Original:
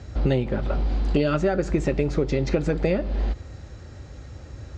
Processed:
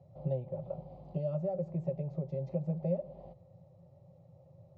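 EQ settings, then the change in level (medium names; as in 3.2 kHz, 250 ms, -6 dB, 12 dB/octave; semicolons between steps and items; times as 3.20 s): two resonant band-passes 300 Hz, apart 1.6 oct; static phaser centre 310 Hz, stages 8; 0.0 dB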